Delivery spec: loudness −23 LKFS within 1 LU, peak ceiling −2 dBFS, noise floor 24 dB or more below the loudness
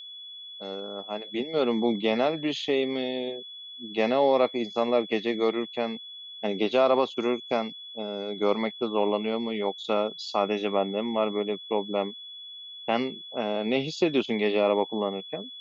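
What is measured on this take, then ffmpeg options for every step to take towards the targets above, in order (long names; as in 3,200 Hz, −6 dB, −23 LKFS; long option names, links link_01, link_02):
interfering tone 3,400 Hz; level of the tone −40 dBFS; integrated loudness −27.5 LKFS; sample peak −10.0 dBFS; target loudness −23.0 LKFS
→ -af "bandreject=frequency=3400:width=30"
-af "volume=4.5dB"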